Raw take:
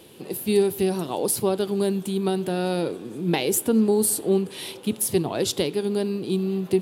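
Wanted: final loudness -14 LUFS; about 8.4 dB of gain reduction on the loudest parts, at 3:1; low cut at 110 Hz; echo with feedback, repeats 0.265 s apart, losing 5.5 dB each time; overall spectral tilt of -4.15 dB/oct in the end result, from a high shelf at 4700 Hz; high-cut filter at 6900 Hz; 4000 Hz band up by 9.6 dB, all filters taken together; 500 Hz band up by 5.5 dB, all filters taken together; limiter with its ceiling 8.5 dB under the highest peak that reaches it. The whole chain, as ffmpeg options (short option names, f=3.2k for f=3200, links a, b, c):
-af "highpass=110,lowpass=6.9k,equalizer=f=500:t=o:g=7.5,equalizer=f=4k:t=o:g=8.5,highshelf=f=4.7k:g=7,acompressor=threshold=-23dB:ratio=3,alimiter=limit=-19.5dB:level=0:latency=1,aecho=1:1:265|530|795|1060|1325|1590|1855:0.531|0.281|0.149|0.079|0.0419|0.0222|0.0118,volume=13.5dB"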